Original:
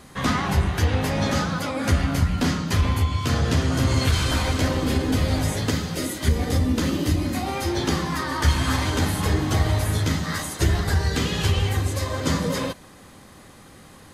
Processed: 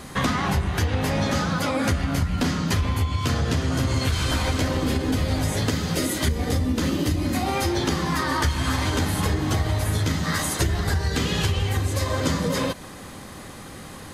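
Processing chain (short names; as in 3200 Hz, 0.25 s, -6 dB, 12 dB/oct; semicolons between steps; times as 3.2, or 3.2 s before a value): compressor 5:1, threshold -28 dBFS, peak gain reduction 13.5 dB; gain +7.5 dB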